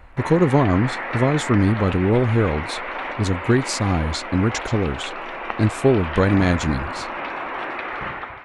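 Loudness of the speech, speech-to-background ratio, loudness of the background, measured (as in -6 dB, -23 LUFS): -20.5 LUFS, 8.5 dB, -29.0 LUFS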